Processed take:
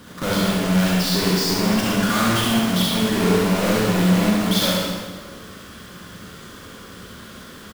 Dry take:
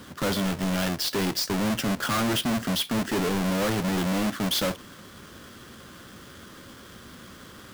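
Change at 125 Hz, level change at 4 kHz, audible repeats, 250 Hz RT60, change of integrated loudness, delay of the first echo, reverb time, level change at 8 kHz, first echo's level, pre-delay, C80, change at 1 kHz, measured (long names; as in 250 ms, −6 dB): +8.5 dB, +6.5 dB, 1, 1.5 s, +7.0 dB, 71 ms, 1.4 s, +6.0 dB, −4.0 dB, 31 ms, 0.5 dB, +6.5 dB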